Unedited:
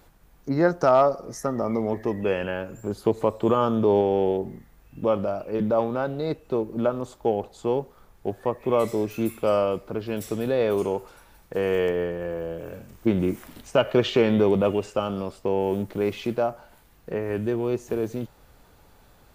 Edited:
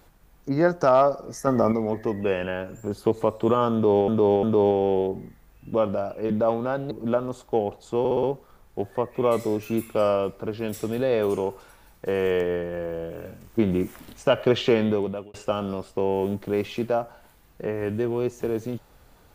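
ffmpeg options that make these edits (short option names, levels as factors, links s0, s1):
-filter_complex "[0:a]asplit=11[s0][s1][s2][s3][s4][s5][s6][s7][s8][s9][s10];[s0]atrim=end=1.472[s11];[s1]atrim=start=1.468:end=1.722,asetpts=PTS-STARTPTS,volume=2[s12];[s2]atrim=start=1.718:end=4.082[s13];[s3]atrim=start=3.728:end=4.082[s14];[s4]atrim=start=3.728:end=6.212[s15];[s5]atrim=start=6.628:end=7.772[s16];[s6]atrim=start=7.708:end=7.772[s17];[s7]atrim=start=7.708:end=7.772[s18];[s8]atrim=start=7.708:end=7.772[s19];[s9]atrim=start=7.708:end=14.82,asetpts=PTS-STARTPTS,afade=t=out:st=6.492:d=0.62[s20];[s10]atrim=start=14.82,asetpts=PTS-STARTPTS,afade=t=in:d=0.004:c=hsin[s21];[s11][s12]acrossfade=d=0.004:c1=hsin:c2=hsin[s22];[s22][s13]acrossfade=d=0.004:c1=hsin:c2=hsin[s23];[s23][s14]acrossfade=d=0.004:c1=hsin:c2=hsin[s24];[s24][s15]acrossfade=d=0.004:c1=hsin:c2=hsin[s25];[s25][s16]acrossfade=d=0.004:c1=hsin:c2=hsin[s26];[s26][s17]acrossfade=d=0.004:c1=hsin:c2=hsin[s27];[s27][s18]acrossfade=d=0.004:c1=hsin:c2=hsin[s28];[s28][s19]acrossfade=d=0.004:c1=hsin:c2=hsin[s29];[s20][s21]concat=n=2:v=0:a=1[s30];[s29][s30]acrossfade=d=0.004:c1=hsin:c2=hsin"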